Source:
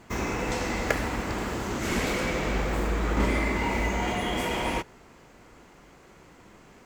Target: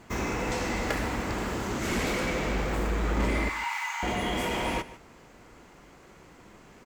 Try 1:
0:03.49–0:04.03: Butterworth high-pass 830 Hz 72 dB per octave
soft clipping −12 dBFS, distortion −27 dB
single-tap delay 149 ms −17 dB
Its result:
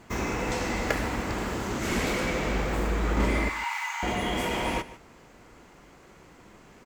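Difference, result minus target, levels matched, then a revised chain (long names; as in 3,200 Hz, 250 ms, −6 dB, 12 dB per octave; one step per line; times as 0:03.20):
soft clipping: distortion −10 dB
0:03.49–0:04.03: Butterworth high-pass 830 Hz 72 dB per octave
soft clipping −20 dBFS, distortion −17 dB
single-tap delay 149 ms −17 dB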